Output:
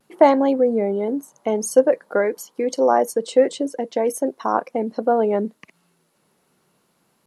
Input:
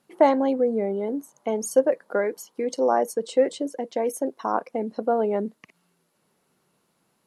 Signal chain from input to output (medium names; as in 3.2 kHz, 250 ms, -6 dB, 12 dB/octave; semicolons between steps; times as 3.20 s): vibrato 0.46 Hz 26 cents; trim +4.5 dB